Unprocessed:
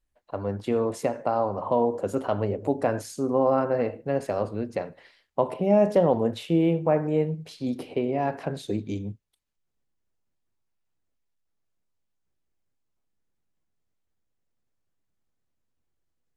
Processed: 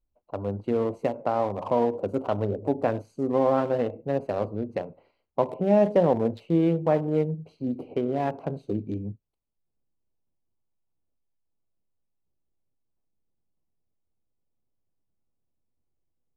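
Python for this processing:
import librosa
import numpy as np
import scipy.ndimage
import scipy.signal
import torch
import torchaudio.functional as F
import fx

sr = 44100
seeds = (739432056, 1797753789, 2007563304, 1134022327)

y = fx.wiener(x, sr, points=25)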